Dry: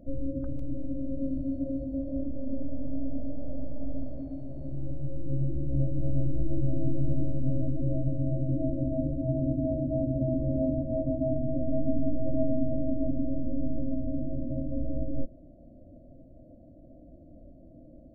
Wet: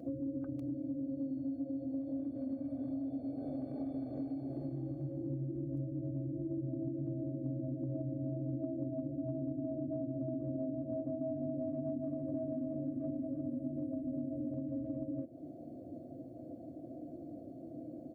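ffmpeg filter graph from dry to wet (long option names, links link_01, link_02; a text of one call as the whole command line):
ffmpeg -i in.wav -filter_complex "[0:a]asettb=1/sr,asplit=3[link_01][link_02][link_03];[link_01]atrim=end=7.034[link_04];[link_02]atrim=start=7.03:end=8.93,asetpts=PTS-STARTPTS,afade=type=in:duration=0.004:curve=qsin,afade=type=out:start_time=1.896:duration=0.004:curve=qsin,highpass=59,asplit=2[link_05][link_06];[link_06]adelay=39,volume=-4dB[link_07];[link_05][link_07]amix=inputs=2:normalize=0,atrim=end_sample=83790[link_08];[link_03]atrim=start=8.926[link_09];[link_04][link_08]acrossfade=duration=0.004:curve1=hsin:curve2=qsin[link_10];[link_10][link_09]acrossfade=duration=0.004:curve1=qsin:curve2=hsin,asettb=1/sr,asplit=3[link_11][link_12][link_13];[link_11]atrim=end=11.044[link_14];[link_12]atrim=start=11.04:end=14.54,asetpts=PTS-STARTPTS,afade=type=in:duration=0.004:curve=qsin,afade=type=out:start_time=3.496:duration=0.004:curve=qsin,asplit=2[link_15][link_16];[link_16]adelay=20,volume=-5.5dB[link_17];[link_15][link_17]amix=inputs=2:normalize=0,atrim=end_sample=154350,aecho=1:1:352:0.562,atrim=end_sample=154350[link_18];[link_13]atrim=start=14.536[link_19];[link_14][link_18]acrossfade=duration=0.004:curve1=hsin:curve2=qsin[link_20];[link_20][link_19]acrossfade=duration=0.004:curve1=qsin:curve2=hsin,highpass=frequency=130:width=0.5412,highpass=frequency=130:width=1.3066,aecho=1:1:2.6:0.59,acompressor=threshold=-43dB:ratio=6,volume=6.5dB" out.wav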